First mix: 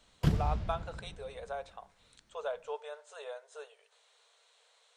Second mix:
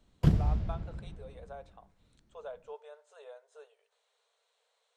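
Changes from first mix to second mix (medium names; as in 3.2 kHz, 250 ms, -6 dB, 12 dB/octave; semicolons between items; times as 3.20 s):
speech -7.5 dB; master: add tilt shelf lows +4 dB, about 790 Hz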